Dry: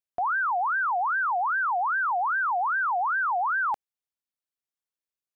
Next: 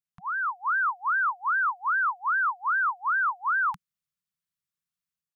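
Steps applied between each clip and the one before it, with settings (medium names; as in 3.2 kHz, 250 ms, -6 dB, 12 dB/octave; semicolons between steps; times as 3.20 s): elliptic band-stop 180–1100 Hz, stop band 40 dB; peaking EQ 180 Hz +13 dB 1.6 oct; level rider gain up to 6 dB; trim -4.5 dB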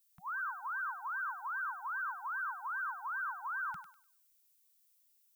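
peak limiter -26 dBFS, peak gain reduction 5.5 dB; added noise violet -63 dBFS; thinning echo 99 ms, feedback 35%, high-pass 1 kHz, level -6 dB; trim -9 dB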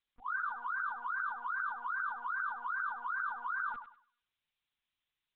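in parallel at -10 dB: saturation -39.5 dBFS, distortion -13 dB; on the sum: monotone LPC vocoder at 8 kHz 240 Hz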